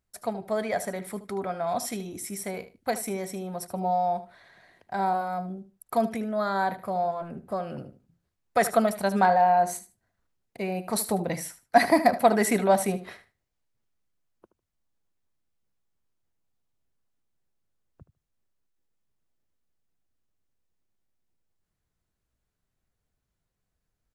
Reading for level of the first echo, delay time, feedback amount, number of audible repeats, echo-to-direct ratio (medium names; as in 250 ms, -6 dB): -14.0 dB, 76 ms, 18%, 2, -14.0 dB